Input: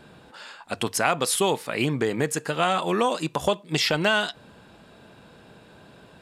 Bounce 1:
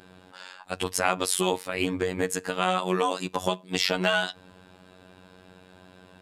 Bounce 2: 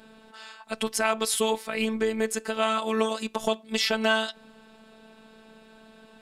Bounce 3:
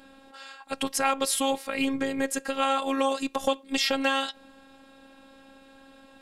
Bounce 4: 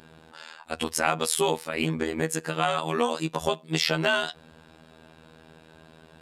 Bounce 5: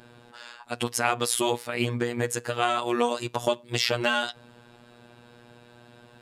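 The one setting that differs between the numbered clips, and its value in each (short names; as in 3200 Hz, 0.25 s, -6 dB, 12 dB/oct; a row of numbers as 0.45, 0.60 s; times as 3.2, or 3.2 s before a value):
robotiser, frequency: 92, 220, 270, 80, 120 Hz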